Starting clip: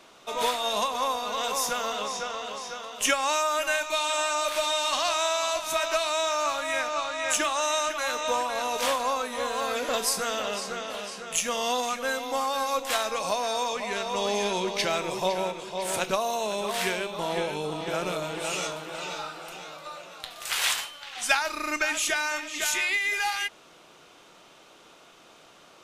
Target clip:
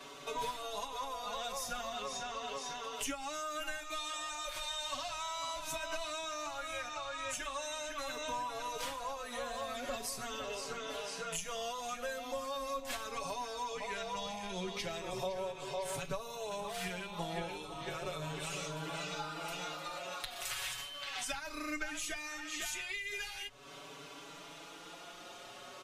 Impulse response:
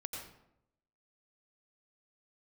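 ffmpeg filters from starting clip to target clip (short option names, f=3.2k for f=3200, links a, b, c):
-filter_complex "[0:a]aecho=1:1:7.1:0.54,acrossover=split=140[a][b];[b]acompressor=threshold=-40dB:ratio=8[c];[a][c]amix=inputs=2:normalize=0,asplit=2[d][e];[e]adelay=4.8,afreqshift=0.38[f];[d][f]amix=inputs=2:normalize=1,volume=5dB"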